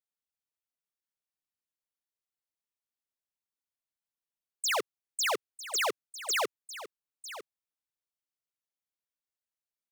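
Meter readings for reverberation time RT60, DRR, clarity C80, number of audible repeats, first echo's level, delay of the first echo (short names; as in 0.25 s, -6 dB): none, none, none, 1, -14.0 dB, 0.952 s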